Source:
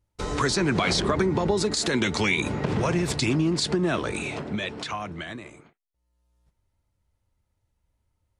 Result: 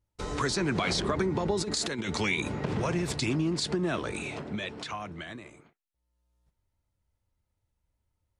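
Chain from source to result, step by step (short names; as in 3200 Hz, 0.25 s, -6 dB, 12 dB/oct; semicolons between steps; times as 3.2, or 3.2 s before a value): 1.58–2.17 negative-ratio compressor -26 dBFS, ratio -0.5; gain -5 dB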